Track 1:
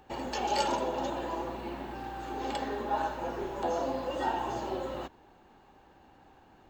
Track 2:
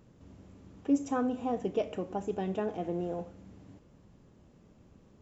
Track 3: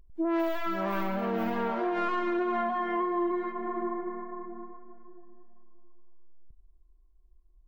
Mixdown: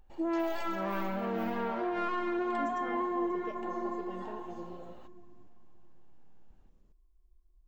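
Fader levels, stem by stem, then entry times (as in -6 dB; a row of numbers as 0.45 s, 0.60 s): -18.0 dB, -13.5 dB, -3.5 dB; 0.00 s, 1.70 s, 0.00 s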